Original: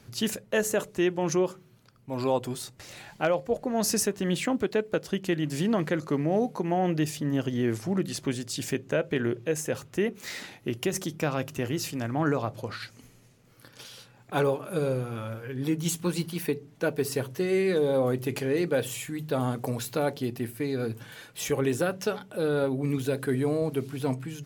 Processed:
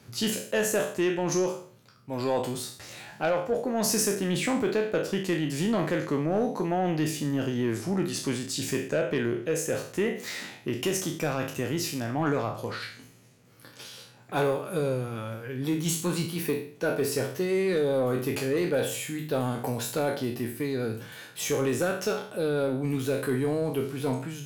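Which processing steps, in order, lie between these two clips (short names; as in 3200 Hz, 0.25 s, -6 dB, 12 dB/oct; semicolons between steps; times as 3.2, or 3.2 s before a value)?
spectral trails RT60 0.48 s; HPF 79 Hz; soft clip -17 dBFS, distortion -19 dB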